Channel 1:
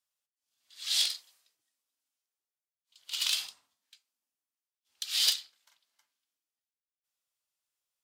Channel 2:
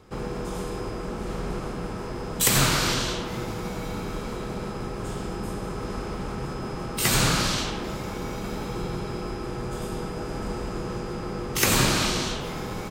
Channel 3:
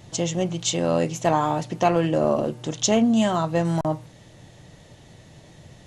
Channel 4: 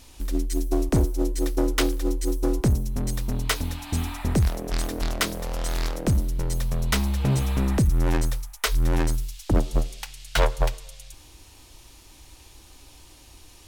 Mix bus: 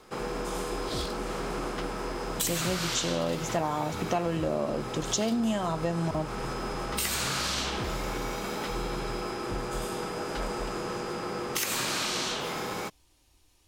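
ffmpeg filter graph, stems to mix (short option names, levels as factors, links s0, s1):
-filter_complex "[0:a]volume=0.316[s0];[1:a]highpass=f=480:p=1,acompressor=threshold=0.0447:ratio=6,volume=1.41[s1];[2:a]adelay=2300,volume=0.891[s2];[3:a]acrossover=split=6000[s3][s4];[s4]acompressor=threshold=0.00398:ratio=4:attack=1:release=60[s5];[s3][s5]amix=inputs=2:normalize=0,volume=0.168[s6];[s0][s1][s2][s6]amix=inputs=4:normalize=0,acompressor=threshold=0.0447:ratio=3"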